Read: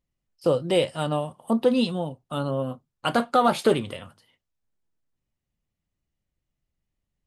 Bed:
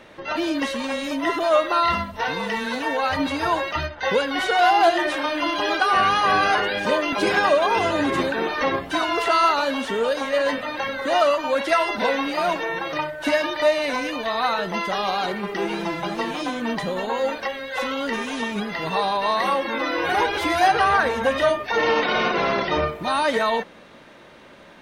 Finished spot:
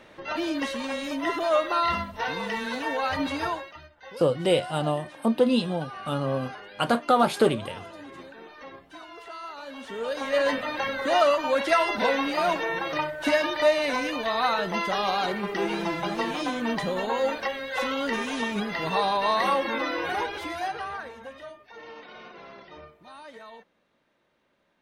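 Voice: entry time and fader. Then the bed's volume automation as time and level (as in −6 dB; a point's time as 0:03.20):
3.75 s, −0.5 dB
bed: 0:03.44 −4.5 dB
0:03.79 −21.5 dB
0:09.46 −21.5 dB
0:10.37 −2 dB
0:19.69 −2 dB
0:21.53 −24 dB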